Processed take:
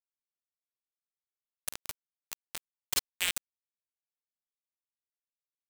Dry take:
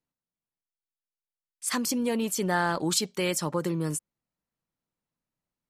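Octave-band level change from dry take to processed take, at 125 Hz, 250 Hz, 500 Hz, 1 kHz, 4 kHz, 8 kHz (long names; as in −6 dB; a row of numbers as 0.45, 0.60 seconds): −26.5, −31.5, −25.0, −19.0, −3.5, −7.0 decibels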